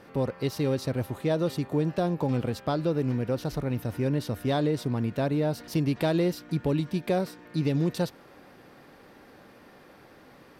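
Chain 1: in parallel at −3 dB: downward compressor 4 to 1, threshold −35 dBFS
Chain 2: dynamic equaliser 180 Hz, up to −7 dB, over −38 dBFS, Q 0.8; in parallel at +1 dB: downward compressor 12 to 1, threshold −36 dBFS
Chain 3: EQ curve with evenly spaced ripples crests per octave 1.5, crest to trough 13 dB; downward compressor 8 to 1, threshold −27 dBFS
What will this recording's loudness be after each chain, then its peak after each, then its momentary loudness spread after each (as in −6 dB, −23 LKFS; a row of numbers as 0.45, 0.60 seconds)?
−26.5, −29.0, −32.5 LKFS; −13.0, −13.0, −16.5 dBFS; 4, 19, 19 LU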